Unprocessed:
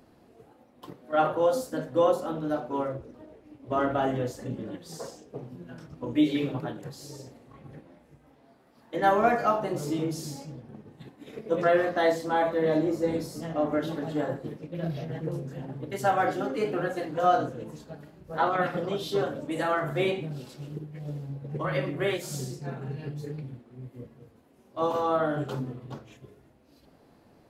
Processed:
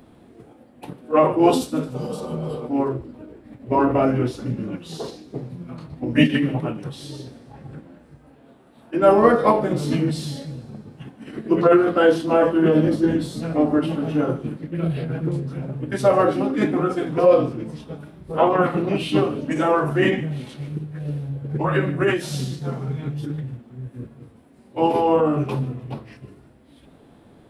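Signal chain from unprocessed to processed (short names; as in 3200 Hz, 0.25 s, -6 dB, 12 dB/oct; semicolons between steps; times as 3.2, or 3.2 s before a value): spectral repair 1.97–2.61, 240–3700 Hz after; bell 8000 Hz -7 dB 0.62 oct; formant shift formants -4 st; on a send: thin delay 0.15 s, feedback 53%, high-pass 2700 Hz, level -18 dB; on the sum: gain +8.5 dB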